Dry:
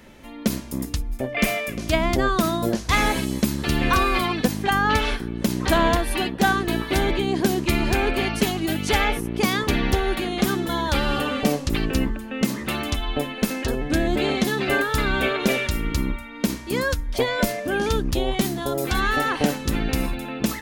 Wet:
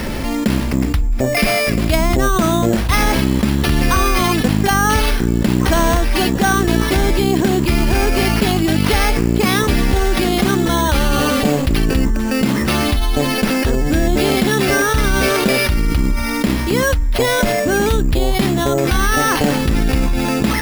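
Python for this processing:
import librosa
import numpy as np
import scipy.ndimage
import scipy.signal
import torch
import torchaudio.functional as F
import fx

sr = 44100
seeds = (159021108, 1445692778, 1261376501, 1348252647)

y = scipy.signal.sosfilt(scipy.signal.butter(12, 9900.0, 'lowpass', fs=sr, output='sos'), x)
y = fx.low_shelf(y, sr, hz=130.0, db=6.5)
y = np.repeat(y[::6], 6)[:len(y)]
y = fx.env_flatten(y, sr, amount_pct=70)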